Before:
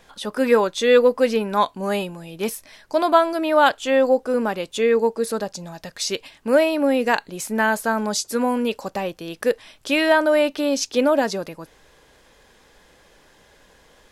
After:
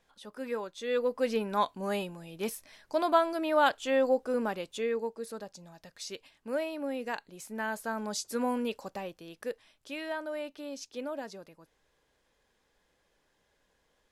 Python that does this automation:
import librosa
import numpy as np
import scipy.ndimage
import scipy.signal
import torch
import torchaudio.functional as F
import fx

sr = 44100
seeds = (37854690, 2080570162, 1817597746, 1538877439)

y = fx.gain(x, sr, db=fx.line((0.77, -18.5), (1.36, -9.0), (4.51, -9.0), (5.13, -16.0), (7.46, -16.0), (8.5, -9.0), (9.94, -19.5)))